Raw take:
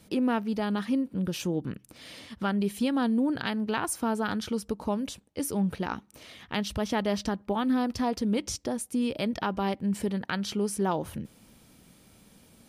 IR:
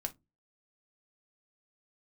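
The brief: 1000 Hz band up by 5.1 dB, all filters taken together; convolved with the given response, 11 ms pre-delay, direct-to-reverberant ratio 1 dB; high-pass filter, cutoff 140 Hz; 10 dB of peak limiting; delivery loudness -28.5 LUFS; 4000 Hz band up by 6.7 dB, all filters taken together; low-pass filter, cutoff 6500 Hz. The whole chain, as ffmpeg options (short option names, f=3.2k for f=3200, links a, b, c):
-filter_complex "[0:a]highpass=140,lowpass=6.5k,equalizer=f=1k:t=o:g=6,equalizer=f=4k:t=o:g=9,alimiter=limit=-19dB:level=0:latency=1,asplit=2[a][b];[1:a]atrim=start_sample=2205,adelay=11[c];[b][c]afir=irnorm=-1:irlink=0,volume=-1dB[d];[a][d]amix=inputs=2:normalize=0,volume=-1dB"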